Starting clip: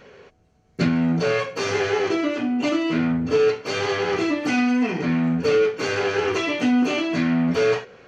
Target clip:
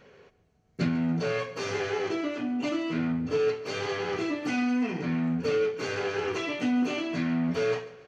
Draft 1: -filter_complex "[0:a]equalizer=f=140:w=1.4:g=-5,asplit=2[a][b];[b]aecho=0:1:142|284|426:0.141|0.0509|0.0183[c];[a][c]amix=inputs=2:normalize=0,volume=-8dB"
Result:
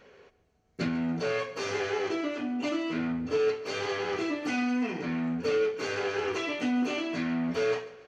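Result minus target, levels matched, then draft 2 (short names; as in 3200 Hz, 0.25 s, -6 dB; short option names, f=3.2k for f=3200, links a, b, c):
125 Hz band -5.0 dB
-filter_complex "[0:a]equalizer=f=140:w=1.4:g=3,asplit=2[a][b];[b]aecho=0:1:142|284|426:0.141|0.0509|0.0183[c];[a][c]amix=inputs=2:normalize=0,volume=-8dB"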